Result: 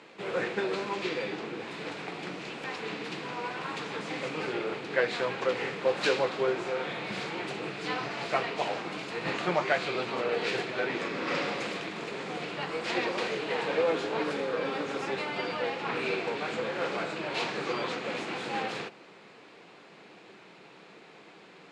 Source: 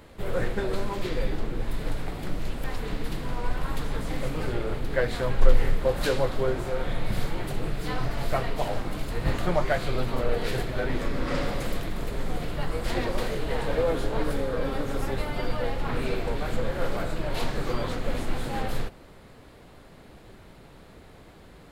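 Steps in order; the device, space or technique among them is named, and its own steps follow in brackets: television speaker (cabinet simulation 200–6900 Hz, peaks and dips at 250 Hz -9 dB, 590 Hz -5 dB, 2.5 kHz +7 dB); trim +1 dB

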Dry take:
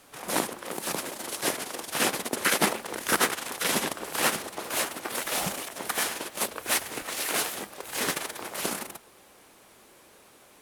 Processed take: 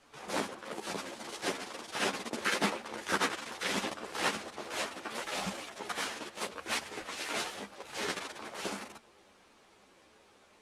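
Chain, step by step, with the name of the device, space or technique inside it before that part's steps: string-machine ensemble chorus (three-phase chorus; low-pass 6.2 kHz 12 dB/octave); trim -2.5 dB

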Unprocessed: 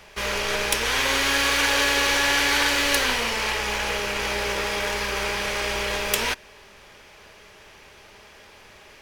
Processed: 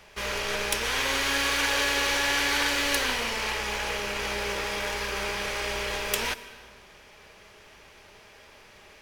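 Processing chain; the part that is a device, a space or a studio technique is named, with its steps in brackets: compressed reverb return (on a send at -5.5 dB: reverberation RT60 0.85 s, pre-delay 112 ms + compression 6:1, threshold -32 dBFS, peak gain reduction 13 dB); on the sum: trim -4.5 dB

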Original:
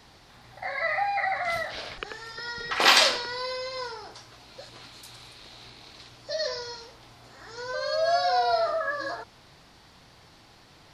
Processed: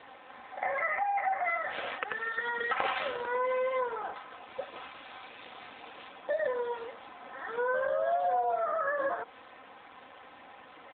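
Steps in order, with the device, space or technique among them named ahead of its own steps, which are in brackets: 3.44–3.94 s: treble shelf 3.4 kHz +2.5 dB; comb 3.9 ms, depth 51%; dynamic bell 440 Hz, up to +4 dB, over -36 dBFS, Q 0.73; high-pass 100 Hz 12 dB/octave; voicemail (band-pass 380–2600 Hz; compression 8:1, threshold -35 dBFS, peak gain reduction 20.5 dB; trim +8.5 dB; AMR-NB 7.4 kbps 8 kHz)

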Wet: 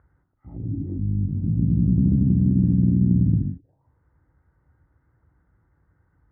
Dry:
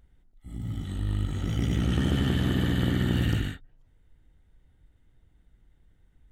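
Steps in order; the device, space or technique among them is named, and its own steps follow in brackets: envelope filter bass rig (touch-sensitive low-pass 210–1400 Hz down, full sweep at -27 dBFS; cabinet simulation 65–2000 Hz, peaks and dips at 220 Hz -9 dB, 420 Hz -4 dB, 690 Hz -5 dB, 1.3 kHz -6 dB); trim +4 dB

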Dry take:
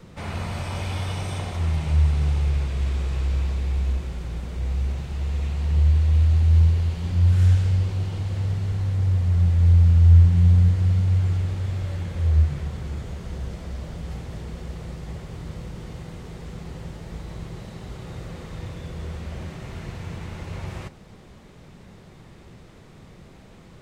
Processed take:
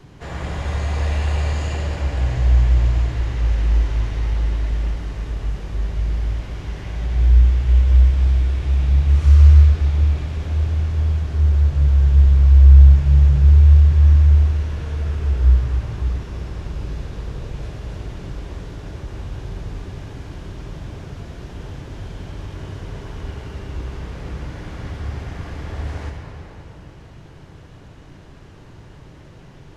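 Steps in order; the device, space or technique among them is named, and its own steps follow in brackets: slowed and reverbed (tape speed -20%; reverberation RT60 3.5 s, pre-delay 54 ms, DRR 1 dB); trim +1.5 dB

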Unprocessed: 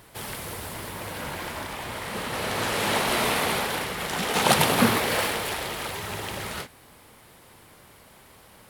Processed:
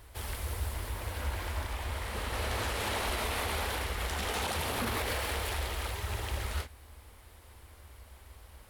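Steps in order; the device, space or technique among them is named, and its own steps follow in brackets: car stereo with a boomy subwoofer (resonant low shelf 100 Hz +13 dB, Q 3; peak limiter -17.5 dBFS, peak gain reduction 11.5 dB); trim -6 dB

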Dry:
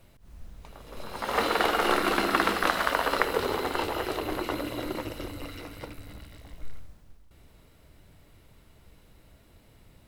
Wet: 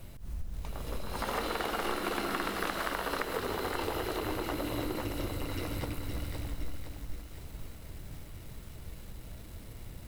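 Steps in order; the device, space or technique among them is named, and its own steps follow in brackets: ASMR close-microphone chain (bass shelf 240 Hz +7.5 dB; compression 6:1, threshold -36 dBFS, peak gain reduction 17.5 dB; treble shelf 6.4 kHz +6 dB); bit-crushed delay 515 ms, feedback 55%, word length 9-bit, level -6.5 dB; trim +4 dB

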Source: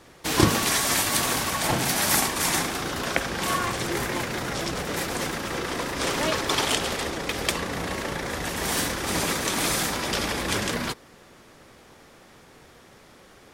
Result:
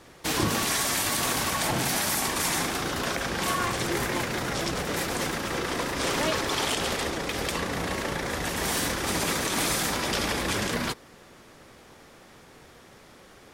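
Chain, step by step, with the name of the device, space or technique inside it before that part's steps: clipper into limiter (hard clipper -9 dBFS, distortion -26 dB; peak limiter -16.5 dBFS, peak gain reduction 7.5 dB)

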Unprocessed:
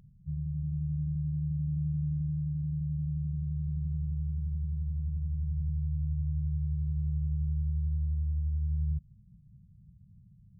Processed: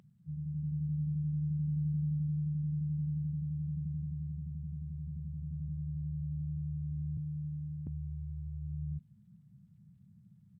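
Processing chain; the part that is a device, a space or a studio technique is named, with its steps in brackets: 7.17–7.87 s: high-pass 93 Hz 24 dB/octave; Bluetooth headset (high-pass 210 Hz 12 dB/octave; level rider gain up to 3.5 dB; resampled via 16 kHz; trim +2.5 dB; SBC 64 kbps 32 kHz)

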